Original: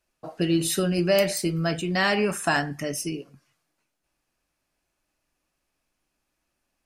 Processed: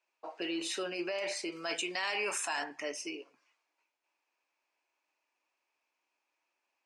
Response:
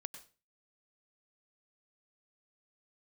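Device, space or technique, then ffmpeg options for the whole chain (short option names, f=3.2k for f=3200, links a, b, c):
laptop speaker: -filter_complex "[0:a]highpass=f=340:w=0.5412,highpass=f=340:w=1.3066,lowpass=f=7.5k:w=0.5412,lowpass=f=7.5k:w=1.3066,equalizer=f=940:t=o:w=0.41:g=10,equalizer=f=2.4k:t=o:w=0.53:g=9,alimiter=limit=-20dB:level=0:latency=1:release=10,asettb=1/sr,asplit=3[a][b][c];[a]atrim=end=1.524[d];[b]atrim=start=1.52:end=2.64,asetpts=PTS-STARTPTS,afade=t=in:d=0.004:c=qsin,afade=t=out:st=1.116:d=0.004:c=qsin,aemphasis=mode=production:type=75kf[e];[c]atrim=start=2.636[f];[d][e]acrossfade=d=0.004:c1=hsin:c2=qsin[g];[g][f]acrossfade=d=0.004:c1=qsin:c2=hsin,volume=-7.5dB"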